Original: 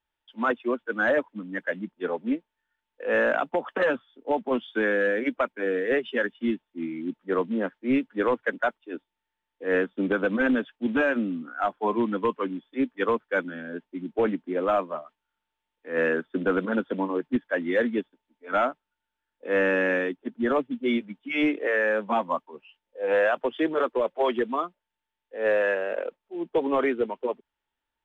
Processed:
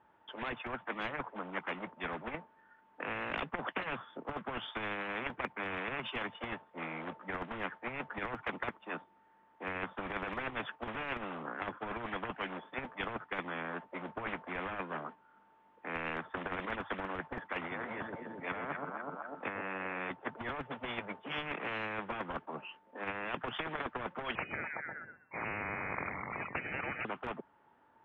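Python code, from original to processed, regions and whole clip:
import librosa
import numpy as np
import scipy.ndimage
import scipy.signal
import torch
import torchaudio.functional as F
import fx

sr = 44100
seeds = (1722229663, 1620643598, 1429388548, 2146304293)

y = fx.chain(x, sr, fx.air_absorb(metres=140.0),
    fx.over_compress(threshold_db=-36.0, ratio=-1.0),
    fx.echo_alternate(ms=125, hz=910.0, feedback_pct=56, wet_db=-8.0), at=(17.59, 20.11))
y = fx.chain(y, sr, fx.env_flanger(rest_ms=6.1, full_db=-24.0),
    fx.echo_stepped(ms=125, hz=660.0, octaves=0.7, feedback_pct=70, wet_db=-8.0),
    fx.freq_invert(carrier_hz=2700), at=(24.35, 27.05))
y = scipy.signal.sosfilt(scipy.signal.cheby1(2, 1.0, [140.0, 1100.0], 'bandpass', fs=sr, output='sos'), y)
y = fx.over_compress(y, sr, threshold_db=-27.0, ratio=-0.5)
y = fx.spectral_comp(y, sr, ratio=10.0)
y = F.gain(torch.from_numpy(y), -4.5).numpy()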